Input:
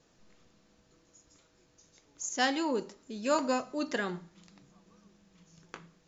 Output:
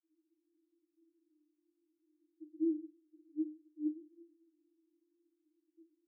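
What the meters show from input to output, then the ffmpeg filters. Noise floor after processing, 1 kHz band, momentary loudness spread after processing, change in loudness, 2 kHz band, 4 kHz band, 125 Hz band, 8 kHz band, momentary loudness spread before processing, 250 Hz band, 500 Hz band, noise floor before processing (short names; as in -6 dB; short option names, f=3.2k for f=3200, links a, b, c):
-84 dBFS, under -40 dB, 19 LU, -7.5 dB, under -40 dB, under -40 dB, under -30 dB, n/a, 19 LU, -3.5 dB, under -10 dB, -67 dBFS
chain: -af "asuperpass=centerf=320:order=20:qfactor=7,volume=1.5dB"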